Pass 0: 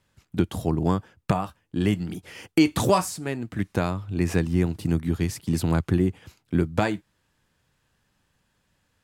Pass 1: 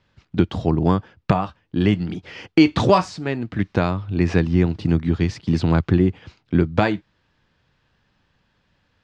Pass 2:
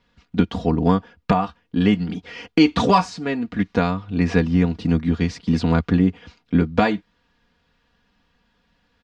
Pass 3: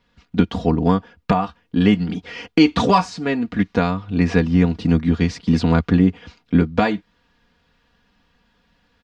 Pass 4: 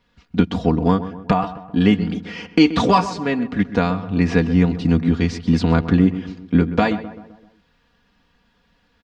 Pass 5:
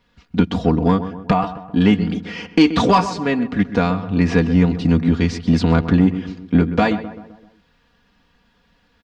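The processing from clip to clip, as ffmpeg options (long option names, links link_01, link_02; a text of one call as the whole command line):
ffmpeg -i in.wav -af "lowpass=frequency=5000:width=0.5412,lowpass=frequency=5000:width=1.3066,volume=5dB" out.wav
ffmpeg -i in.wav -af "aecho=1:1:4.2:0.73,volume=-1dB" out.wav
ffmpeg -i in.wav -af "dynaudnorm=framelen=100:gausssize=3:maxgain=3dB" out.wav
ffmpeg -i in.wav -filter_complex "[0:a]asplit=2[link_01][link_02];[link_02]adelay=129,lowpass=frequency=1900:poles=1,volume=-13dB,asplit=2[link_03][link_04];[link_04]adelay=129,lowpass=frequency=1900:poles=1,volume=0.51,asplit=2[link_05][link_06];[link_06]adelay=129,lowpass=frequency=1900:poles=1,volume=0.51,asplit=2[link_07][link_08];[link_08]adelay=129,lowpass=frequency=1900:poles=1,volume=0.51,asplit=2[link_09][link_10];[link_10]adelay=129,lowpass=frequency=1900:poles=1,volume=0.51[link_11];[link_01][link_03][link_05][link_07][link_09][link_11]amix=inputs=6:normalize=0" out.wav
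ffmpeg -i in.wav -af "asoftclip=type=tanh:threshold=-5dB,volume=2dB" out.wav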